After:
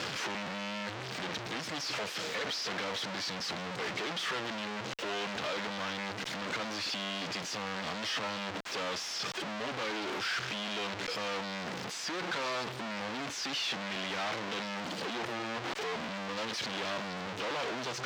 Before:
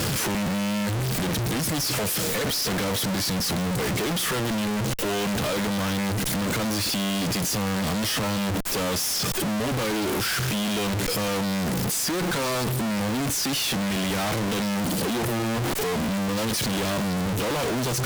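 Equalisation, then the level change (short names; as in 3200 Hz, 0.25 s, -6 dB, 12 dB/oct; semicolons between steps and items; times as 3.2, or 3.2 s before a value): HPF 900 Hz 6 dB/oct; air absorption 180 m; bell 8700 Hz +3 dB 2.6 oct; -3.5 dB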